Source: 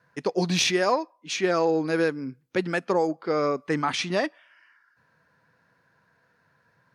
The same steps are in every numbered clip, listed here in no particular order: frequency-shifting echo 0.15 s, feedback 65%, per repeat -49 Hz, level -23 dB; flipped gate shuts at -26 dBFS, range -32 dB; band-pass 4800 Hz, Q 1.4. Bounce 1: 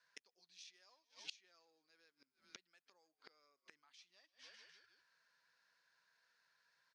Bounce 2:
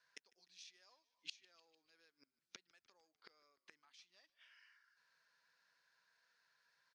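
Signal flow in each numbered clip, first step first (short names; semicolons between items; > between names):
frequency-shifting echo > flipped gate > band-pass; flipped gate > band-pass > frequency-shifting echo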